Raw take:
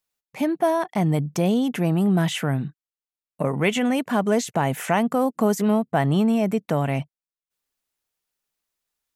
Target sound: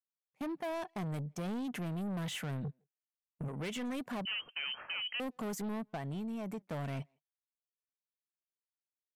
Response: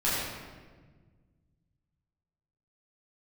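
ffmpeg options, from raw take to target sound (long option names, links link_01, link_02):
-filter_complex "[0:a]agate=range=-29dB:threshold=-31dB:ratio=16:detection=peak,asplit=3[link_01][link_02][link_03];[link_01]afade=type=out:start_time=2.63:duration=0.02[link_04];[link_02]asubboost=boost=9.5:cutoff=220,afade=type=in:start_time=2.63:duration=0.02,afade=type=out:start_time=3.47:duration=0.02[link_05];[link_03]afade=type=in:start_time=3.47:duration=0.02[link_06];[link_04][link_05][link_06]amix=inputs=3:normalize=0,asettb=1/sr,asplit=3[link_07][link_08][link_09];[link_07]atrim=end=5.964[link_10];[link_08]atrim=start=5.96:end=6.66,asetpts=PTS-STARTPTS,afade=type=in:duration=0.004:curve=qsin,afade=type=out:start_time=0.696:duration=0.004:curve=qsin,acompressor=threshold=-23dB:ratio=6[link_11];[link_09]atrim=start=6.656[link_12];[link_10][link_11]acrossfade=duration=0.004:curve1=hsin:curve2=qsin[link_13];[link_13][link_12]acrossfade=duration=0.004:curve1=qsin:curve2=hsin,alimiter=limit=-13dB:level=0:latency=1:release=226,asoftclip=type=tanh:threshold=-26dB,asplit=2[link_14][link_15];[link_15]adelay=160,highpass=300,lowpass=3400,asoftclip=type=hard:threshold=-34dB,volume=-29dB[link_16];[link_14][link_16]amix=inputs=2:normalize=0,asettb=1/sr,asplit=3[link_17][link_18][link_19];[link_17]atrim=end=4.254[link_20];[link_18]atrim=start=4.25:end=5.2,asetpts=PTS-STARTPTS,afade=type=in:duration=0.004:curve=qsin,afade=type=out:start_time=0.946:duration=0.004:curve=qsin,lowpass=frequency=2700:width_type=q:width=0.5098,lowpass=frequency=2700:width_type=q:width=0.6013,lowpass=frequency=2700:width_type=q:width=0.9,lowpass=frequency=2700:width_type=q:width=2.563,afreqshift=-3200[link_21];[link_19]atrim=start=5.196[link_22];[link_20][link_21]acrossfade=duration=0.004:curve1=hsin:curve2=qsin[link_23];[link_23][link_22]acrossfade=duration=0.004:curve1=qsin:curve2=hsin,volume=-9dB"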